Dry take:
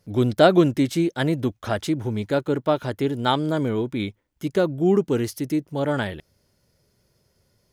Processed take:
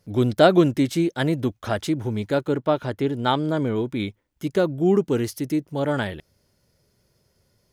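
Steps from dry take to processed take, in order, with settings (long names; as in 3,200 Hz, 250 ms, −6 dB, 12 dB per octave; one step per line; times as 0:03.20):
0:02.54–0:03.76: high-shelf EQ 5,900 Hz −7.5 dB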